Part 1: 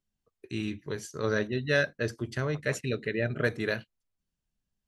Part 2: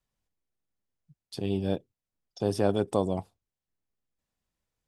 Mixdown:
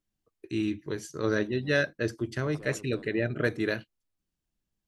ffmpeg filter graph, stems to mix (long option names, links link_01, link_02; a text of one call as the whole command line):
ffmpeg -i stem1.wav -i stem2.wav -filter_complex "[0:a]volume=-0.5dB,asplit=2[link_01][link_02];[1:a]asoftclip=type=tanh:threshold=-22.5dB,volume=-11.5dB[link_03];[link_02]apad=whole_len=215091[link_04];[link_03][link_04]sidechaincompress=threshold=-31dB:ratio=8:attack=6:release=992[link_05];[link_01][link_05]amix=inputs=2:normalize=0,equalizer=frequency=320:width=4.7:gain=8.5" out.wav